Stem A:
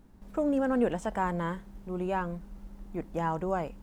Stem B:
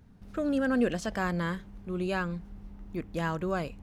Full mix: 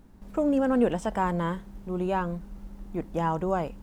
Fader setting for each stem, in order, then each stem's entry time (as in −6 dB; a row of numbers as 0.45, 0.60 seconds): +3.0, −15.0 decibels; 0.00, 0.00 seconds